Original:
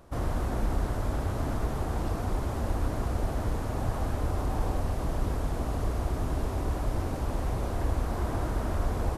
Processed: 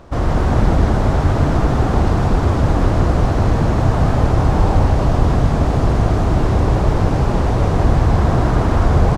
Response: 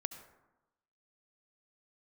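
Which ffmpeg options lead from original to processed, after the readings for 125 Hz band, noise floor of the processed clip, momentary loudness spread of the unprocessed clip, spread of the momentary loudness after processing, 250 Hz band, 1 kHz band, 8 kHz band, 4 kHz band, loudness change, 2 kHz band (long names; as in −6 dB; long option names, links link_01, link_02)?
+16.5 dB, −18 dBFS, 1 LU, 2 LU, +16.0 dB, +15.0 dB, +8.5 dB, +13.5 dB, +15.5 dB, +14.5 dB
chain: -filter_complex "[0:a]asplit=7[link_01][link_02][link_03][link_04][link_05][link_06][link_07];[link_02]adelay=156,afreqshift=50,volume=-4.5dB[link_08];[link_03]adelay=312,afreqshift=100,volume=-10.9dB[link_09];[link_04]adelay=468,afreqshift=150,volume=-17.3dB[link_10];[link_05]adelay=624,afreqshift=200,volume=-23.6dB[link_11];[link_06]adelay=780,afreqshift=250,volume=-30dB[link_12];[link_07]adelay=936,afreqshift=300,volume=-36.4dB[link_13];[link_01][link_08][link_09][link_10][link_11][link_12][link_13]amix=inputs=7:normalize=0,asplit=2[link_14][link_15];[1:a]atrim=start_sample=2205,asetrate=27342,aresample=44100,lowpass=7200[link_16];[link_15][link_16]afir=irnorm=-1:irlink=0,volume=6.5dB[link_17];[link_14][link_17]amix=inputs=2:normalize=0,volume=2dB"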